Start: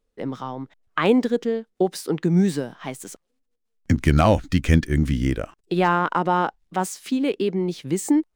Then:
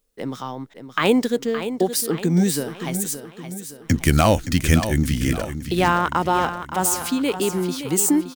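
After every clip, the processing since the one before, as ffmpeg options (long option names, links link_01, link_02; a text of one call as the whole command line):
ffmpeg -i in.wav -af "aemphasis=mode=production:type=75kf,aecho=1:1:569|1138|1707|2276|2845:0.299|0.143|0.0688|0.033|0.0158" out.wav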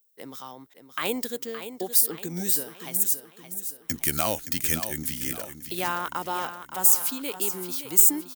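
ffmpeg -i in.wav -af "aemphasis=mode=production:type=bsi,volume=-10dB" out.wav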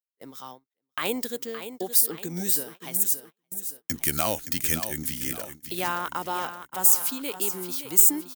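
ffmpeg -i in.wav -af "agate=range=-34dB:threshold=-40dB:ratio=16:detection=peak" out.wav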